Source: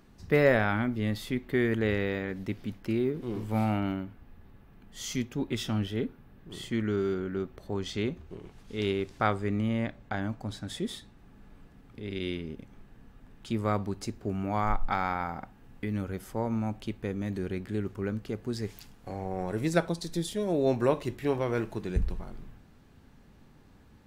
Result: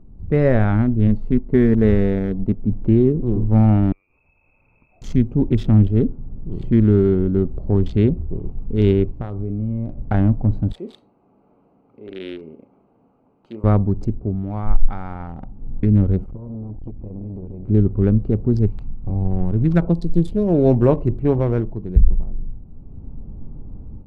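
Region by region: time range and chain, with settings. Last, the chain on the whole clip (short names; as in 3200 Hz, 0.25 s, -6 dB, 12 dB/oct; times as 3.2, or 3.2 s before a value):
1.07–2.67 G.711 law mismatch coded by A + bell 2600 Hz -4 dB 0.38 oct + comb 4.6 ms, depth 35%
3.92–5.02 notches 50/100/150/200/250/300/350/400 Hz + compressor 20:1, threshold -50 dBFS + inverted band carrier 2600 Hz
9.1–9.97 compressor 5:1, threshold -33 dBFS + resonator 60 Hz, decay 0.25 s
10.72–13.64 HPF 630 Hz + doubler 37 ms -10 dB
16.24–17.68 high shelf 4300 Hz -9 dB + compressor 8:1, threshold -41 dBFS + core saturation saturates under 780 Hz
18.66–19.82 bell 540 Hz -9.5 dB 1.5 oct + decimation joined by straight lines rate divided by 4×
whole clip: Wiener smoothing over 25 samples; tilt -4 dB/oct; AGC gain up to 9 dB; gain -1 dB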